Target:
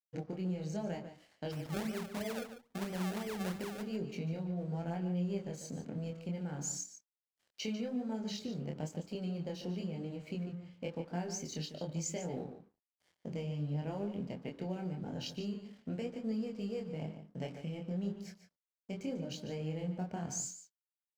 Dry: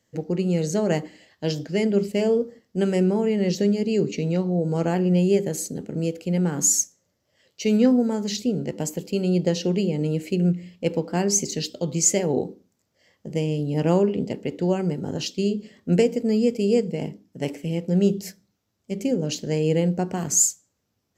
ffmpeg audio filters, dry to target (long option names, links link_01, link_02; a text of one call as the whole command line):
ffmpeg -i in.wav -filter_complex "[0:a]lowpass=5000,lowshelf=frequency=140:gain=-9,aecho=1:1:1.3:0.38,adynamicequalizer=threshold=0.01:dfrequency=110:dqfactor=0.78:tfrequency=110:tqfactor=0.78:attack=5:release=100:ratio=0.375:range=3.5:mode=boostabove:tftype=bell,acompressor=threshold=-37dB:ratio=4,aeval=exprs='sgn(val(0))*max(abs(val(0))-0.00126,0)':channel_layout=same,flanger=delay=22.5:depth=4.8:speed=0.98,asplit=3[link_01][link_02][link_03];[link_01]afade=type=out:start_time=1.51:duration=0.02[link_04];[link_02]acrusher=samples=31:mix=1:aa=0.000001:lfo=1:lforange=31:lforate=3,afade=type=in:start_time=1.51:duration=0.02,afade=type=out:start_time=3.81:duration=0.02[link_05];[link_03]afade=type=in:start_time=3.81:duration=0.02[link_06];[link_04][link_05][link_06]amix=inputs=3:normalize=0,asplit=2[link_07][link_08];[link_08]adelay=145.8,volume=-10dB,highshelf=frequency=4000:gain=-3.28[link_09];[link_07][link_09]amix=inputs=2:normalize=0,volume=1.5dB" out.wav